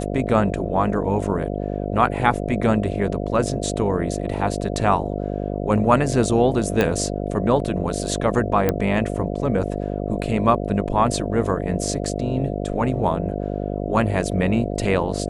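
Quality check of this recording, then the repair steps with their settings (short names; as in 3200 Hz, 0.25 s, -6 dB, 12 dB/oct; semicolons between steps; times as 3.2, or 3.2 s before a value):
buzz 50 Hz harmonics 14 -26 dBFS
6.81 pop -6 dBFS
8.69 pop -6 dBFS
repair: de-click; de-hum 50 Hz, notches 14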